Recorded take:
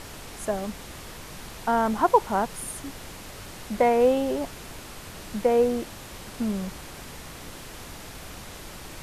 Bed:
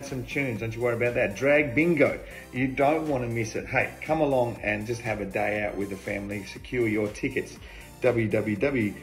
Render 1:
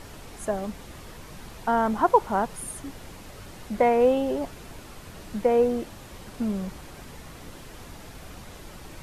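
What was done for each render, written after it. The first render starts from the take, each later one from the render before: noise reduction 6 dB, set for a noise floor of -42 dBFS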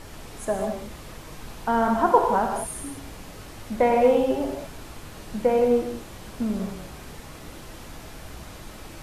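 gated-style reverb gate 230 ms flat, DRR 2 dB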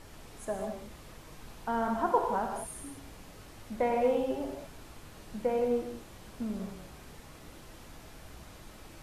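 trim -9 dB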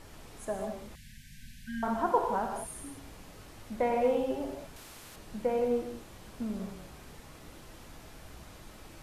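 0.95–1.83 s: brick-wall FIR band-stop 260–1500 Hz; 4.76–5.16 s: spectrum-flattening compressor 2:1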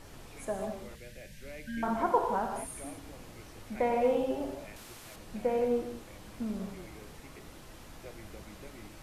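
add bed -26 dB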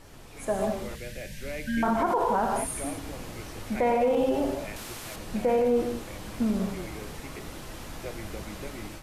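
level rider gain up to 9.5 dB; peak limiter -16.5 dBFS, peak gain reduction 11.5 dB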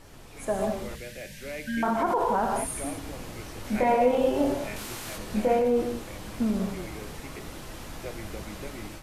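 1.01–2.03 s: bass shelf 110 Hz -9.5 dB; 3.62–5.59 s: doubling 24 ms -2 dB

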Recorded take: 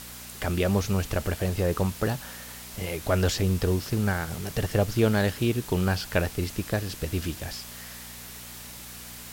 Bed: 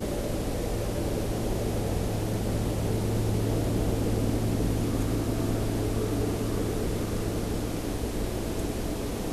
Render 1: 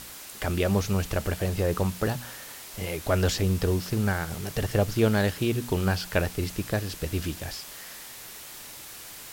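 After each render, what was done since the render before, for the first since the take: de-hum 60 Hz, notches 4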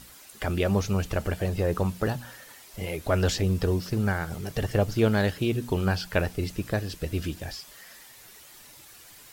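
noise reduction 9 dB, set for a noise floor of -43 dBFS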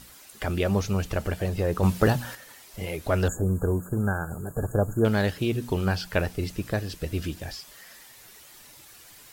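1.83–2.35 s: gain +6.5 dB; 3.28–5.05 s: brick-wall FIR band-stop 1.7–6.6 kHz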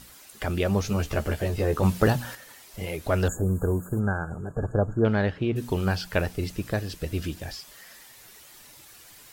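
0.83–1.84 s: doubling 14 ms -3.5 dB; 3.99–5.55 s: low-pass 5.5 kHz -> 2.2 kHz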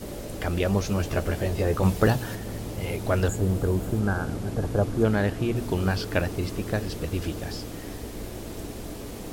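add bed -6 dB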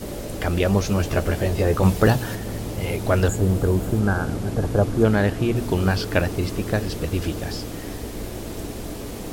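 trim +4.5 dB; peak limiter -3 dBFS, peak gain reduction 1.5 dB

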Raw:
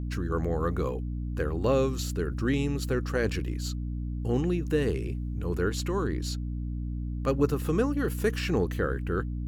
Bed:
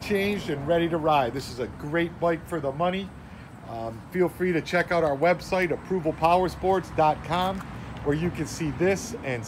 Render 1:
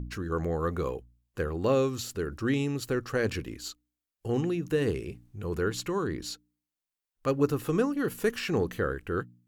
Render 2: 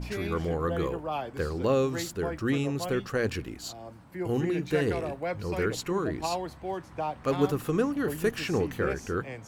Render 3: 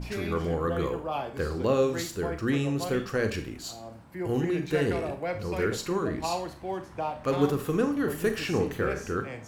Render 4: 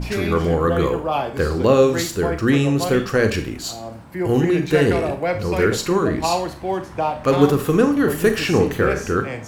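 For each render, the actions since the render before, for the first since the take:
de-hum 60 Hz, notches 5
add bed -11 dB
Schroeder reverb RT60 0.37 s, combs from 28 ms, DRR 7.5 dB
trim +10 dB; peak limiter -2 dBFS, peak gain reduction 1 dB

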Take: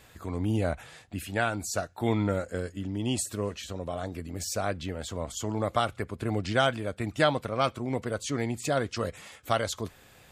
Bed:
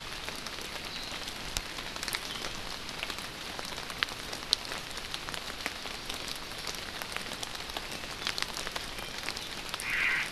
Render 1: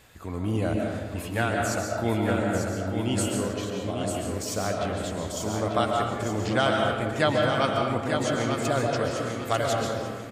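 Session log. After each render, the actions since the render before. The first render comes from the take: feedback delay 895 ms, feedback 31%, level -6 dB; algorithmic reverb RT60 1.6 s, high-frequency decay 0.5×, pre-delay 95 ms, DRR 0.5 dB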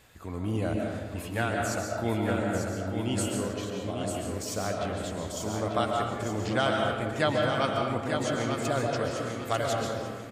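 trim -3 dB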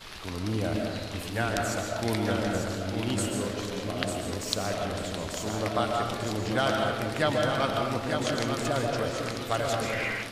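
add bed -3.5 dB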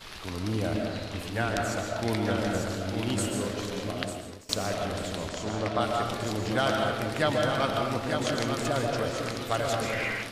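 0.74–2.38 s: treble shelf 6.9 kHz -5.5 dB; 3.87–4.49 s: fade out, to -23.5 dB; 5.29–5.81 s: distance through air 64 m

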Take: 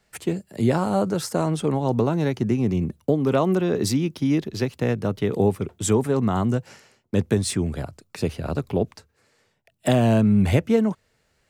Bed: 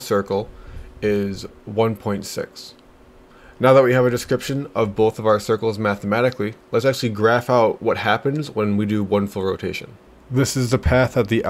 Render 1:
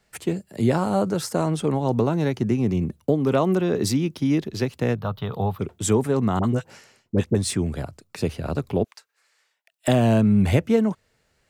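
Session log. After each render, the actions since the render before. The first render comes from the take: 4.96–5.59 s: FFT filter 140 Hz 0 dB, 330 Hz -15 dB, 700 Hz +1 dB, 1.2 kHz +6 dB, 2.1 kHz -9 dB, 3.7 kHz +3 dB, 5.8 kHz -13 dB, 9.1 kHz -20 dB, 14 kHz +4 dB; 6.39–7.35 s: phase dispersion highs, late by 45 ms, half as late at 900 Hz; 8.84–9.88 s: high-pass 1.1 kHz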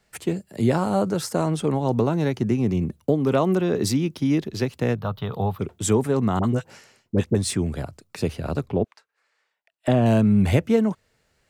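8.66–10.06 s: low-pass 1.8 kHz 6 dB/octave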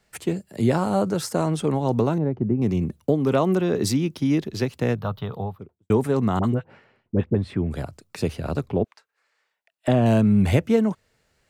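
2.18–2.62 s: Bessel low-pass 630 Hz; 5.05–5.90 s: studio fade out; 6.54–7.71 s: distance through air 480 m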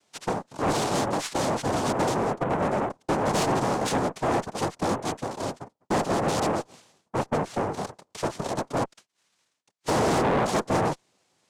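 noise-vocoded speech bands 2; valve stage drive 19 dB, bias 0.3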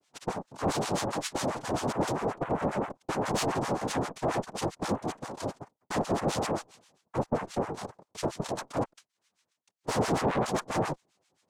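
harmonic tremolo 7.5 Hz, depth 100%, crossover 990 Hz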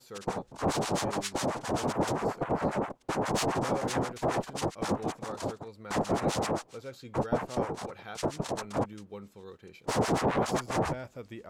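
add bed -25 dB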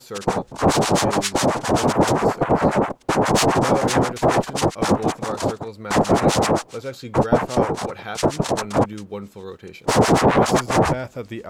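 trim +12 dB

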